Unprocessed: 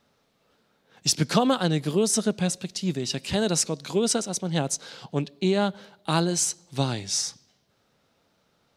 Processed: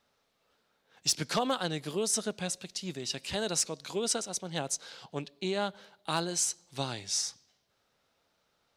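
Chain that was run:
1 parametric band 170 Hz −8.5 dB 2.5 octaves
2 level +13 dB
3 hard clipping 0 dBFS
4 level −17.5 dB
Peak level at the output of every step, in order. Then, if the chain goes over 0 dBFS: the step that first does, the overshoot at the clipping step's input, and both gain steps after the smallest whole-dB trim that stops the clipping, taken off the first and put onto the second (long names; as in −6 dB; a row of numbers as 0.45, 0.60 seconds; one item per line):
−8.5, +4.5, 0.0, −17.5 dBFS
step 2, 4.5 dB
step 2 +8 dB, step 4 −12.5 dB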